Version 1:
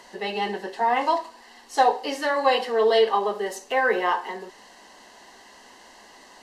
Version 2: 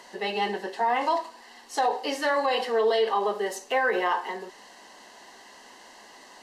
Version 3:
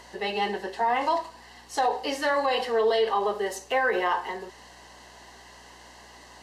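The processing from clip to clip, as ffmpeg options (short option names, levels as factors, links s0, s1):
-af "alimiter=limit=0.168:level=0:latency=1:release=43,lowshelf=f=110:g=-8.5"
-af "aeval=exprs='val(0)+0.00126*(sin(2*PI*60*n/s)+sin(2*PI*2*60*n/s)/2+sin(2*PI*3*60*n/s)/3+sin(2*PI*4*60*n/s)/4+sin(2*PI*5*60*n/s)/5)':c=same"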